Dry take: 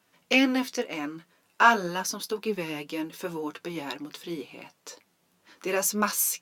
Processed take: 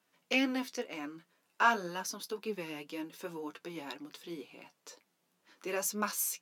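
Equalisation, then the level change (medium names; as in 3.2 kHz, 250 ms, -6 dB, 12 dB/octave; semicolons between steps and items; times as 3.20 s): high-pass 150 Hz 12 dB/octave; -8.0 dB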